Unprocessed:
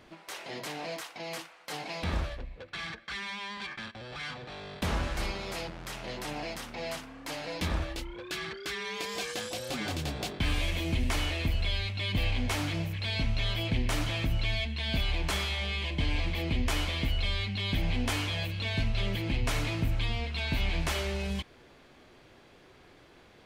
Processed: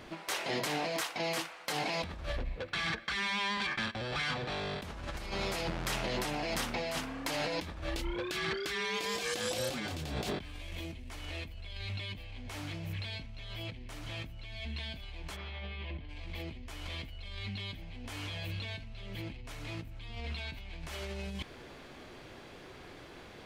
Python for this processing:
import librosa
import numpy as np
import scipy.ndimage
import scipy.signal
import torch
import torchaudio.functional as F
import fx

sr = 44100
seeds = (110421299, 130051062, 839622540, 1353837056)

y = fx.over_compress(x, sr, threshold_db=-39.0, ratio=-1.0)
y = fx.air_absorb(y, sr, metres=310.0, at=(15.35, 16.08), fade=0.02)